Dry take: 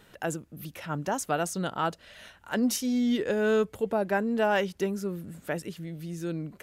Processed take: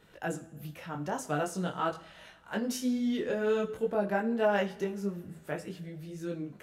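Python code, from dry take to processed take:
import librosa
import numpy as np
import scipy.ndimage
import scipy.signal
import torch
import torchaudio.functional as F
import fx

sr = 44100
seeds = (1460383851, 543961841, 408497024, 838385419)

y = fx.high_shelf(x, sr, hz=4800.0, db=-5.5)
y = fx.rev_double_slope(y, sr, seeds[0], early_s=0.47, late_s=2.4, knee_db=-18, drr_db=9.5)
y = fx.detune_double(y, sr, cents=17)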